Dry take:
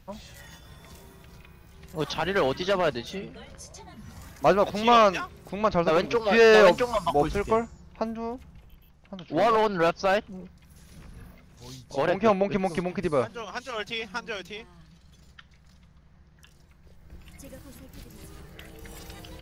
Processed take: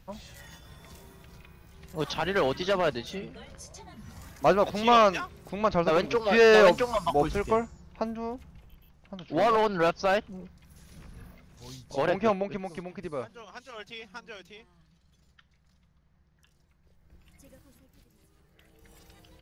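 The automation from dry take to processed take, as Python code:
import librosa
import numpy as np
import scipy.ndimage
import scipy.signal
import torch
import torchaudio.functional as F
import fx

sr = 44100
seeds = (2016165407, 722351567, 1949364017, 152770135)

y = fx.gain(x, sr, db=fx.line((12.16, -1.5), (12.64, -10.0), (17.54, -10.0), (18.31, -18.5), (18.91, -12.0)))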